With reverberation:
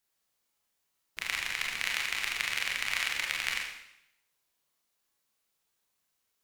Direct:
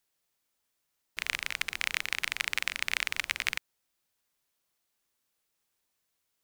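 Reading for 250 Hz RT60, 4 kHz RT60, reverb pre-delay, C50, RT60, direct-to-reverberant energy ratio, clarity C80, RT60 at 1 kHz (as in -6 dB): 0.80 s, 0.75 s, 27 ms, 3.0 dB, 0.75 s, -1.5 dB, 6.5 dB, 0.80 s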